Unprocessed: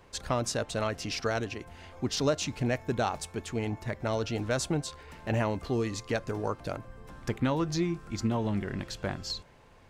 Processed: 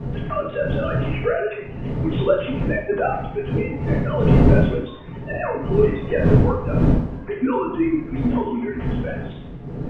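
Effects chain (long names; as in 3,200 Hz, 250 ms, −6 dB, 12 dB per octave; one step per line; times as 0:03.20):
three sine waves on the formant tracks
wind on the microphone 220 Hz −29 dBFS
coupled-rooms reverb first 0.63 s, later 1.7 s, from −24 dB, DRR −6 dB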